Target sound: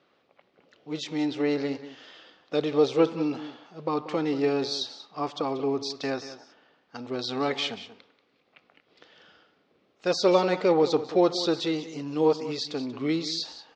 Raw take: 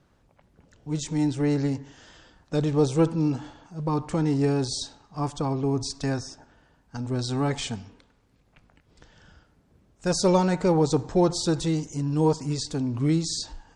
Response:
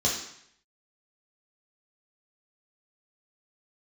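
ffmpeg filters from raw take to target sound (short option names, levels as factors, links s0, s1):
-af "highpass=470,equalizer=f=640:t=q:w=4:g=-3,equalizer=f=920:t=q:w=4:g=-9,equalizer=f=1600:t=q:w=4:g=-7,lowpass=f=4300:w=0.5412,lowpass=f=4300:w=1.3066,aecho=1:1:185:0.2,volume=2"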